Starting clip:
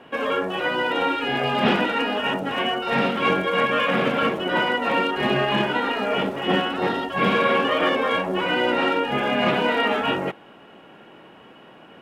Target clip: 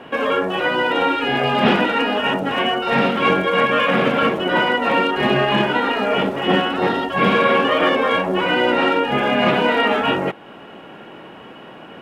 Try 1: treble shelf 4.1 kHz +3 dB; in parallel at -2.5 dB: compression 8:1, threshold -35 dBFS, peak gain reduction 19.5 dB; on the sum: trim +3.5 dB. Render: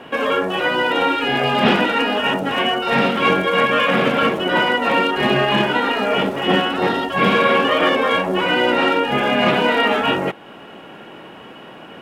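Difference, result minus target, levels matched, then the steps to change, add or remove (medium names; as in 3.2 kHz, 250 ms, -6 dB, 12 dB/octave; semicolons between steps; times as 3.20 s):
8 kHz band +4.0 dB
change: treble shelf 4.1 kHz -3 dB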